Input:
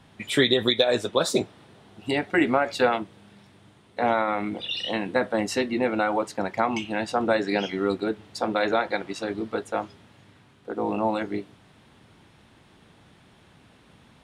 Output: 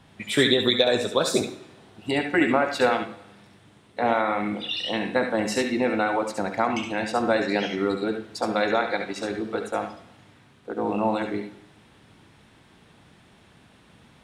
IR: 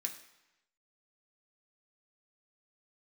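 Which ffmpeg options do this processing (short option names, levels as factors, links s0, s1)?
-filter_complex "[0:a]asplit=2[s0][s1];[1:a]atrim=start_sample=2205,adelay=69[s2];[s1][s2]afir=irnorm=-1:irlink=0,volume=0.596[s3];[s0][s3]amix=inputs=2:normalize=0"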